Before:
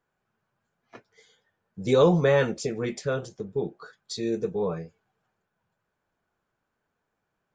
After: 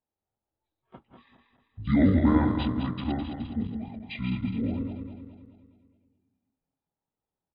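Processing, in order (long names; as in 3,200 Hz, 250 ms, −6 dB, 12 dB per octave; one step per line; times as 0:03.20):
feedback delay that plays each chunk backwards 105 ms, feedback 70%, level −5 dB
noise reduction from a noise print of the clip's start 11 dB
pitch shifter −10.5 semitones
level −2 dB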